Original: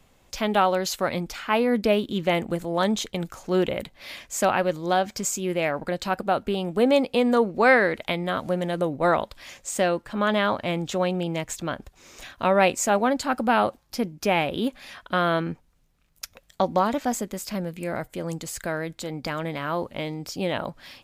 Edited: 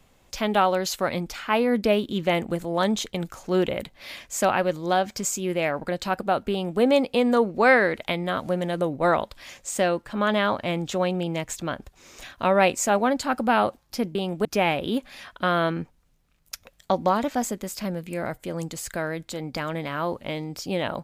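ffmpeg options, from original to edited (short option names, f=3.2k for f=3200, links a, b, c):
-filter_complex "[0:a]asplit=3[a][b][c];[a]atrim=end=14.152[d];[b]atrim=start=6.508:end=6.812[e];[c]atrim=start=14.148[f];[d][e]acrossfade=d=0.004:c1=hsin:c2=hsin[g];[g][f]acrossfade=d=0.004:c1=hsin:c2=hsin"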